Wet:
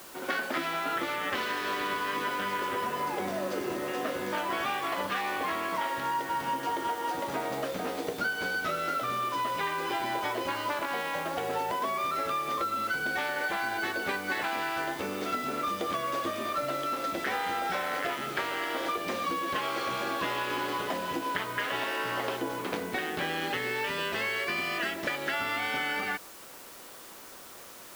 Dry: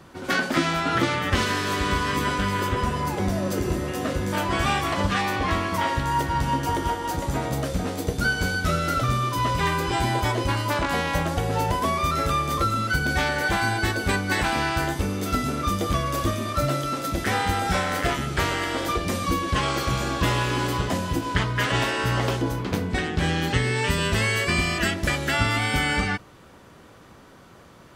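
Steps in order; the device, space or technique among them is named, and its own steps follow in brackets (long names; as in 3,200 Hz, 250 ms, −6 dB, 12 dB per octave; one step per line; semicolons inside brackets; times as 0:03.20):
baby monitor (band-pass filter 370–3,700 Hz; downward compressor, threshold −28 dBFS, peak gain reduction 8.5 dB; white noise bed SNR 17 dB)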